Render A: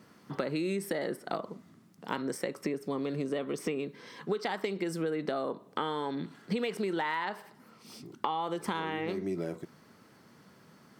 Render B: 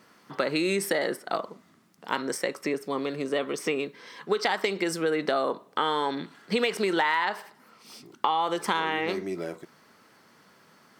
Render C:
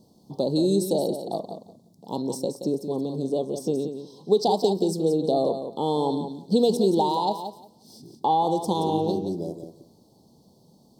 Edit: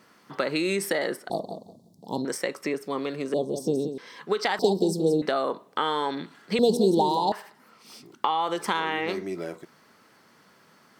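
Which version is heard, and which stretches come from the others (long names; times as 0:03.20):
B
0:01.30–0:02.25: punch in from C
0:03.34–0:03.98: punch in from C
0:04.59–0:05.22: punch in from C
0:06.59–0:07.32: punch in from C
not used: A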